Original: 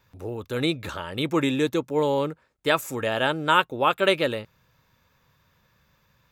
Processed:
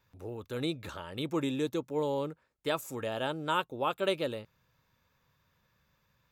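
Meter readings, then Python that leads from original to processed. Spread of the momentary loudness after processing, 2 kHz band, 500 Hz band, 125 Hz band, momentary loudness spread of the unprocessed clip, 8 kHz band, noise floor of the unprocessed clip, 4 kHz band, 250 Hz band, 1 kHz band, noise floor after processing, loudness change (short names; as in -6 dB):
9 LU, -13.0 dB, -8.5 dB, -8.0 dB, 11 LU, -8.5 dB, -66 dBFS, -10.0 dB, -8.0 dB, -10.0 dB, -74 dBFS, -9.5 dB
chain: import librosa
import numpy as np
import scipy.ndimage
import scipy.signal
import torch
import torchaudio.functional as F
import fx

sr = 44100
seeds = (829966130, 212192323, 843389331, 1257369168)

y = fx.dynamic_eq(x, sr, hz=1900.0, q=1.2, threshold_db=-38.0, ratio=4.0, max_db=-7)
y = y * librosa.db_to_amplitude(-8.0)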